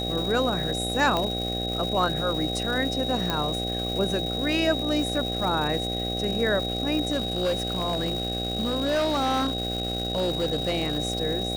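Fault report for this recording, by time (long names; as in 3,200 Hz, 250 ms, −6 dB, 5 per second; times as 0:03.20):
mains buzz 60 Hz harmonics 13 −31 dBFS
surface crackle 520 per second −32 dBFS
whistle 3,800 Hz −30 dBFS
0:01.17: click −12 dBFS
0:03.30: click −11 dBFS
0:07.12–0:10.98: clipping −20.5 dBFS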